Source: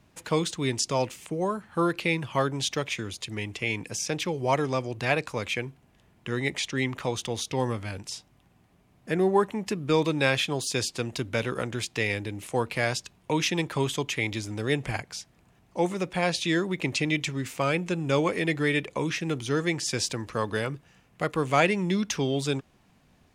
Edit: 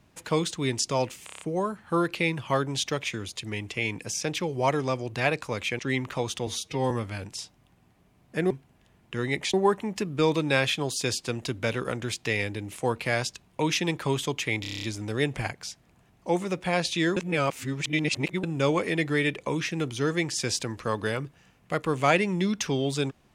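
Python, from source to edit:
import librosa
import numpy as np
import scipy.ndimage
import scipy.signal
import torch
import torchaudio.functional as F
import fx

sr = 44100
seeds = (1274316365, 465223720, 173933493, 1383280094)

y = fx.edit(x, sr, fx.stutter(start_s=1.26, slice_s=0.03, count=6),
    fx.move(start_s=5.64, length_s=1.03, to_s=9.24),
    fx.stretch_span(start_s=7.35, length_s=0.29, factor=1.5),
    fx.stutter(start_s=14.32, slice_s=0.03, count=8),
    fx.reverse_span(start_s=16.66, length_s=1.27), tone=tone)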